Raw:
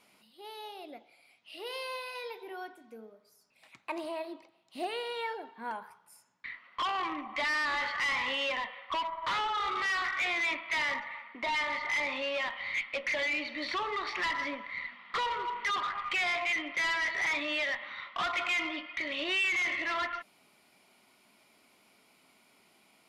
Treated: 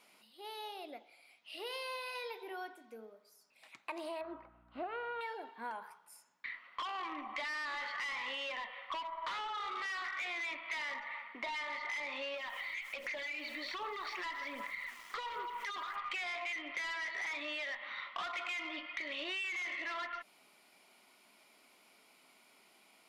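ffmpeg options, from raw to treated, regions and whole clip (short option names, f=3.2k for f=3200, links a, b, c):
-filter_complex "[0:a]asettb=1/sr,asplit=3[a][b][c];[a]atrim=end=4.214[d];[b]atrim=start=4.21:end=5.21,asetpts=PTS-STARTPTS,afade=t=in:d=0.004:c=qsin,afade=t=out:st=0.996:d=0.004:c=qsin,lowpass=f=1.4k:t=q:w=4.9,aeval=exprs='val(0)+0.00141*(sin(2*PI*60*n/s)+sin(2*PI*2*60*n/s)/2+sin(2*PI*3*60*n/s)/3+sin(2*PI*4*60*n/s)/4+sin(2*PI*5*60*n/s)/5)':c=same[e];[c]atrim=start=5.206[f];[d][e]acrossfade=d=0.004:c1=hsin:c2=qsin[g];[g][f]acrossfade=d=0.004:c1=qsin:c2=hsin,asettb=1/sr,asplit=3[h][i][j];[h]atrim=end=12.344[k];[i]atrim=start=12.34:end=15.96,asetpts=PTS-STARTPTS,afade=t=in:d=0.004:c=qsin,afade=t=out:st=3.616:d=0.004:c=qsin,aeval=exprs='val(0)*gte(abs(val(0)),0.00251)':c=same,acompressor=threshold=-37dB:ratio=4:attack=3.2:release=140:knee=1:detection=peak,aphaser=in_gain=1:out_gain=1:delay=3.1:decay=0.39:speed=1.3:type=sinusoidal[l];[j]atrim=start=15.956[m];[k][l]acrossfade=d=0.004:c1=hsin:c2=qsin[n];[n][m]acrossfade=d=0.004:c1=qsin:c2=hsin,equalizer=f=90:w=0.57:g=-12.5,acompressor=threshold=-38dB:ratio=6"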